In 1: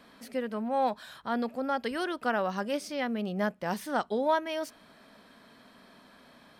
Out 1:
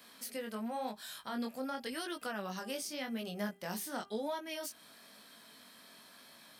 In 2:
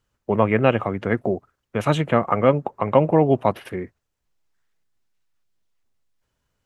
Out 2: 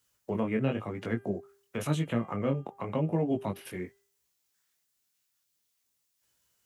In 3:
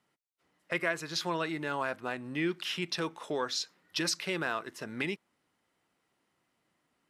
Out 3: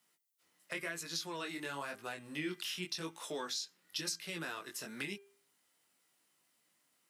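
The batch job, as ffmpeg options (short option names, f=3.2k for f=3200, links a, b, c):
-filter_complex "[0:a]flanger=delay=17.5:depth=5.3:speed=0.93,crystalizer=i=5.5:c=0,highpass=f=120:p=1,acrossover=split=370[a][b];[b]acompressor=threshold=-37dB:ratio=3[c];[a][c]amix=inputs=2:normalize=0,bandreject=f=398.7:t=h:w=4,bandreject=f=797.4:t=h:w=4,bandreject=f=1.1961k:t=h:w=4,bandreject=f=1.5948k:t=h:w=4,bandreject=f=1.9935k:t=h:w=4,bandreject=f=2.3922k:t=h:w=4,bandreject=f=2.7909k:t=h:w=4,bandreject=f=3.1896k:t=h:w=4,volume=-3.5dB"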